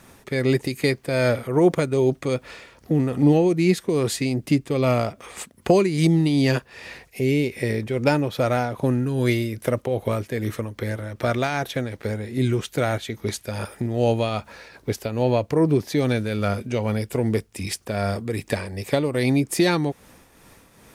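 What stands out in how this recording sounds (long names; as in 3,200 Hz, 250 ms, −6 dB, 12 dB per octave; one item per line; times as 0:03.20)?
a quantiser's noise floor 12 bits, dither none
tremolo triangle 2.5 Hz, depth 55%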